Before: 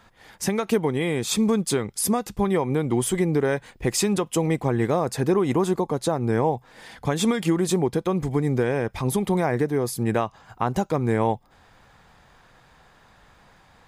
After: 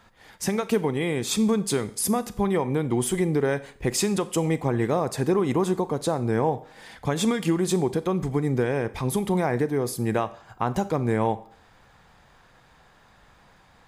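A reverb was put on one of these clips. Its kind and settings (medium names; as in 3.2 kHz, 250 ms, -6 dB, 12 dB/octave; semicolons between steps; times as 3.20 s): Schroeder reverb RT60 0.52 s, combs from 29 ms, DRR 14.5 dB; trim -1.5 dB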